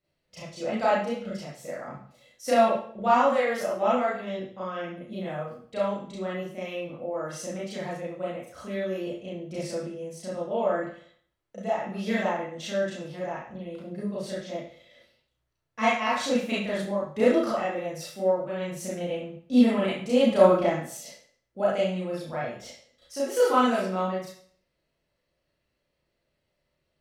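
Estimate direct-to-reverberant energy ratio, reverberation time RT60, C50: -8.0 dB, 0.55 s, 1.0 dB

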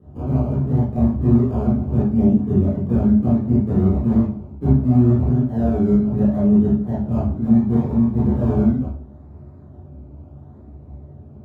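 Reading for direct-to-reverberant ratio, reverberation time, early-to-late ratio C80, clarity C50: -10.5 dB, 0.50 s, 8.5 dB, 1.5 dB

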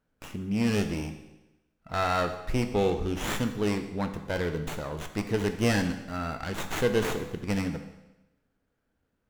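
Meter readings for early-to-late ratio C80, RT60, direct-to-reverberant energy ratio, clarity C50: 11.5 dB, 0.95 s, 7.0 dB, 9.5 dB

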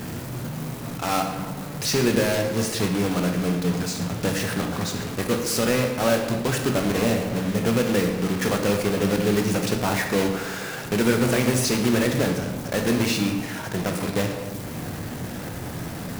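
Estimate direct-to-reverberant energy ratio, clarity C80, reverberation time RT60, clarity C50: 3.0 dB, 7.5 dB, 1.3 s, 5.5 dB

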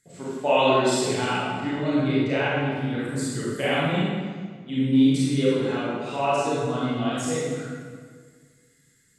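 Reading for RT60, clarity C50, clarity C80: 1.7 s, -4.5 dB, -1.5 dB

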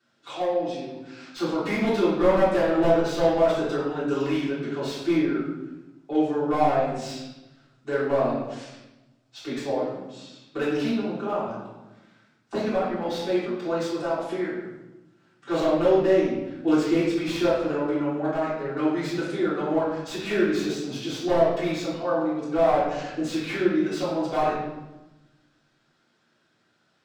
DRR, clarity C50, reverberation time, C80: -11.0 dB, 0.5 dB, 1.1 s, 4.0 dB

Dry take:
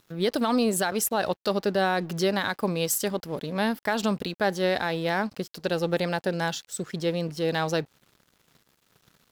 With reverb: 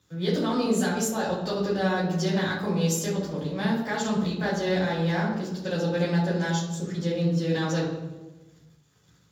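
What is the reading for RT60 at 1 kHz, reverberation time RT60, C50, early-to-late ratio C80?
1.0 s, 1.2 s, 3.5 dB, 6.0 dB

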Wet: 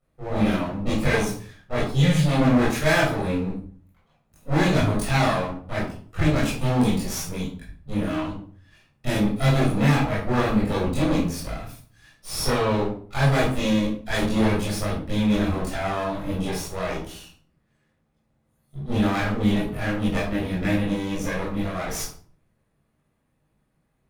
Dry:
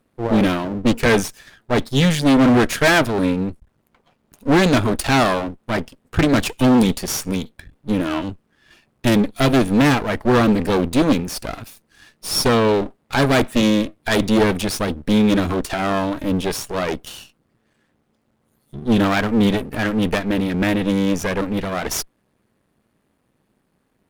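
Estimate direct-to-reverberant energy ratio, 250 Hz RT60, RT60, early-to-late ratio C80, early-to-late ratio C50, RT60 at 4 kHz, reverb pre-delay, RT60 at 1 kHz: -9.0 dB, 0.65 s, 0.45 s, 8.0 dB, 3.5 dB, 0.35 s, 21 ms, 0.40 s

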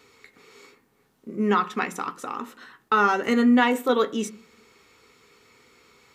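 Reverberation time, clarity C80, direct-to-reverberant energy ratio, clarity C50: 0.50 s, 23.5 dB, 7.0 dB, 18.5 dB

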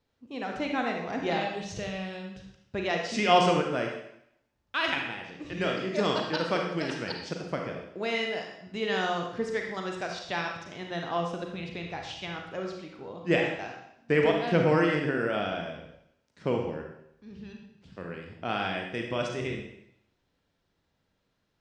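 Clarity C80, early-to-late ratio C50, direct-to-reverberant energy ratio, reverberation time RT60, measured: 6.0 dB, 3.5 dB, 1.5 dB, 0.75 s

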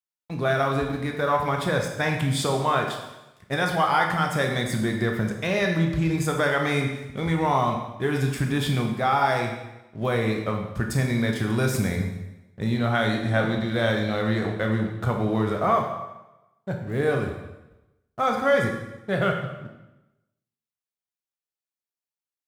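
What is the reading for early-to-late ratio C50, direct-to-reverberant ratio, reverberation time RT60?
5.0 dB, 2.0 dB, 1.0 s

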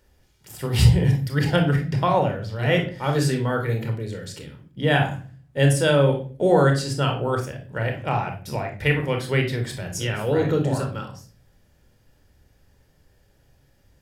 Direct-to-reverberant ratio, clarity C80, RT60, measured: 2.5 dB, 14.5 dB, 0.40 s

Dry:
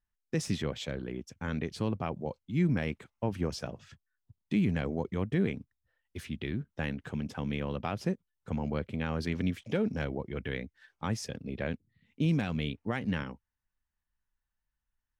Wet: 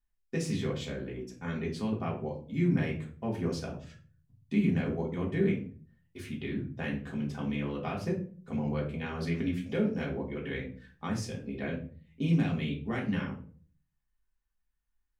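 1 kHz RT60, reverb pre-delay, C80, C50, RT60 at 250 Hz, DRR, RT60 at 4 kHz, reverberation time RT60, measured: 0.35 s, 3 ms, 13.5 dB, 9.0 dB, 0.65 s, -3.5 dB, 0.30 s, 0.40 s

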